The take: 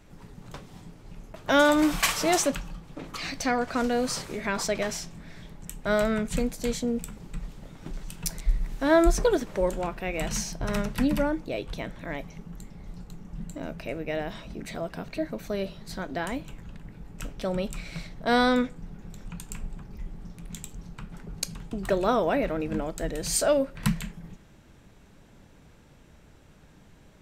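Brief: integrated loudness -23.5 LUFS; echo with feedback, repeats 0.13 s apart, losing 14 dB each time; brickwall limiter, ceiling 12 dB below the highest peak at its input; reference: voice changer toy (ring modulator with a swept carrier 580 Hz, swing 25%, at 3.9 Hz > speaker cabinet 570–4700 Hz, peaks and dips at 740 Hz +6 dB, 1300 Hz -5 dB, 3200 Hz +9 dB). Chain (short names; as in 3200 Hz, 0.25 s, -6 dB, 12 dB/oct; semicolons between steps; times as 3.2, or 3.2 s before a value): limiter -18.5 dBFS; feedback echo 0.13 s, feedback 20%, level -14 dB; ring modulator with a swept carrier 580 Hz, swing 25%, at 3.9 Hz; speaker cabinet 570–4700 Hz, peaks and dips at 740 Hz +6 dB, 1300 Hz -5 dB, 3200 Hz +9 dB; gain +11 dB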